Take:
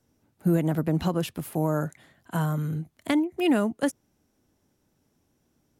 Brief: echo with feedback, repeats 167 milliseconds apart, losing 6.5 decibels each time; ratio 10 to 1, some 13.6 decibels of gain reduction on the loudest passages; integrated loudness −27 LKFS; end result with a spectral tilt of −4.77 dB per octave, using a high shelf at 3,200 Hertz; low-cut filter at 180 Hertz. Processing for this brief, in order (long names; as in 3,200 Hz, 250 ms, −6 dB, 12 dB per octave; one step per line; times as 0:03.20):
high-pass filter 180 Hz
high-shelf EQ 3,200 Hz +6.5 dB
downward compressor 10 to 1, threshold −33 dBFS
repeating echo 167 ms, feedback 47%, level −6.5 dB
level +11 dB